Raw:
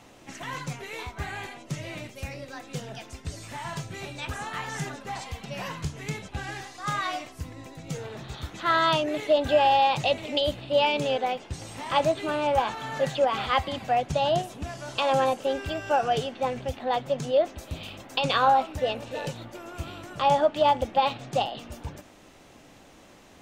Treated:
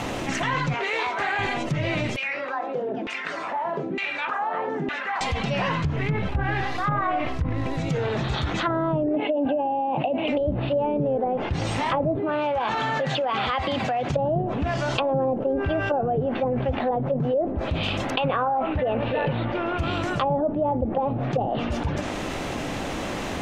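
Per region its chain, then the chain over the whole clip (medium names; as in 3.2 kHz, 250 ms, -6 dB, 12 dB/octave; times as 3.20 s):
0.74–1.39 s: high-pass 460 Hz + treble shelf 4.4 kHz -6.5 dB + loudspeaker Doppler distortion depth 0.13 ms
2.16–5.21 s: high-pass 180 Hz 24 dB/octave + treble shelf 5.4 kHz -10.5 dB + LFO band-pass saw down 1.1 Hz 250–2800 Hz
5.96–7.77 s: low-pass 3.5 kHz + bass shelf 77 Hz +10.5 dB + short-mantissa float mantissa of 2-bit
9.16–10.28 s: cabinet simulation 270–3500 Hz, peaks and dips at 270 Hz +9 dB, 410 Hz -7 dB, 750 Hz +4 dB, 1.3 kHz -9 dB, 1.9 kHz -9 dB, 2.8 kHz +10 dB + compression 10:1, threshold -22 dBFS
12.17–14.14 s: high-pass 120 Hz 6 dB/octave + compression 4:1, threshold -33 dBFS
18.10–19.79 s: low-pass 3.5 kHz 24 dB/octave + compression 16:1, threshold -24 dBFS
whole clip: low-pass that closes with the level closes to 460 Hz, closed at -22.5 dBFS; tone controls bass +1 dB, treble -6 dB; level flattener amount 70%; trim +2 dB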